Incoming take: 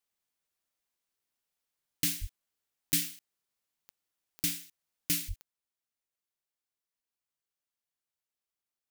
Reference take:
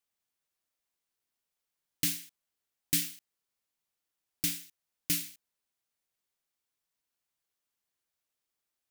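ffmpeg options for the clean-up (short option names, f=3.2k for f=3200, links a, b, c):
-filter_complex "[0:a]adeclick=t=4,asplit=3[a][b][c];[a]afade=t=out:st=2.2:d=0.02[d];[b]highpass=f=140:w=0.5412,highpass=f=140:w=1.3066,afade=t=in:st=2.2:d=0.02,afade=t=out:st=2.32:d=0.02[e];[c]afade=t=in:st=2.32:d=0.02[f];[d][e][f]amix=inputs=3:normalize=0,asplit=3[g][h][i];[g]afade=t=out:st=5.27:d=0.02[j];[h]highpass=f=140:w=0.5412,highpass=f=140:w=1.3066,afade=t=in:st=5.27:d=0.02,afade=t=out:st=5.39:d=0.02[k];[i]afade=t=in:st=5.39:d=0.02[l];[j][k][l]amix=inputs=3:normalize=0,asetnsamples=n=441:p=0,asendcmd='5.29 volume volume 6.5dB',volume=0dB"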